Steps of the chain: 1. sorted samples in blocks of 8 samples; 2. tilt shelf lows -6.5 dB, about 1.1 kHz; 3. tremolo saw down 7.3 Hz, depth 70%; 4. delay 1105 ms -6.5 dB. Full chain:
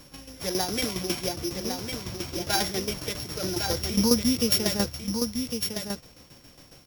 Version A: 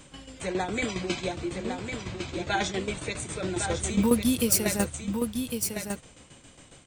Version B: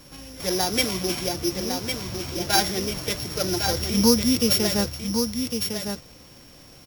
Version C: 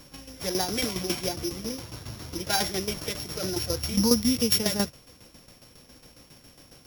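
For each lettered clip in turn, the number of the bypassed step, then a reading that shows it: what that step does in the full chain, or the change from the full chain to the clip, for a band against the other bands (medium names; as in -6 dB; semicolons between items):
1, distortion -13 dB; 3, loudness change +3.5 LU; 4, momentary loudness spread change +3 LU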